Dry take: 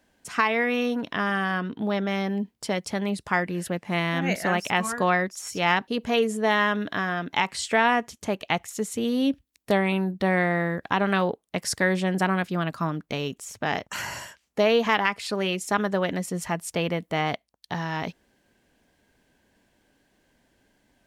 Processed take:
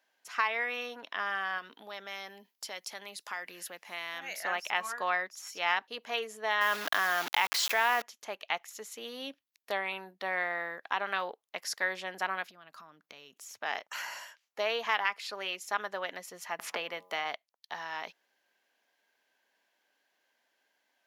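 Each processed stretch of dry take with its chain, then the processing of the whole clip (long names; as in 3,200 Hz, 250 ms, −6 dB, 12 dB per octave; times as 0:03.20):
0:01.58–0:04.40: high-shelf EQ 4,000 Hz +12 dB + downward compressor 3 to 1, threshold −28 dBFS
0:06.61–0:08.02: bit-depth reduction 6 bits, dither none + envelope flattener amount 70%
0:12.45–0:13.59: high-pass filter 49 Hz + bass and treble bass +10 dB, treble +3 dB + downward compressor 12 to 1, threshold −33 dBFS
0:16.59–0:17.25: hum removal 91.69 Hz, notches 14 + multiband upward and downward compressor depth 100%
whole clip: high-pass filter 760 Hz 12 dB per octave; parametric band 8,500 Hz −12 dB 0.32 octaves; level −5.5 dB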